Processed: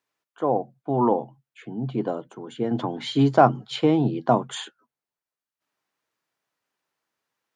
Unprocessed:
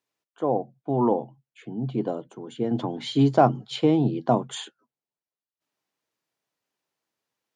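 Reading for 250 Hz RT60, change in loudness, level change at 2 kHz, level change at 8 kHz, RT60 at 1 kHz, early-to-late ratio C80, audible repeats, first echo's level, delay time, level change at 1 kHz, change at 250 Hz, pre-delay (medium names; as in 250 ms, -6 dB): no reverb, +1.0 dB, +5.0 dB, +0.5 dB, no reverb, no reverb, no echo, no echo, no echo, +3.0 dB, +0.5 dB, no reverb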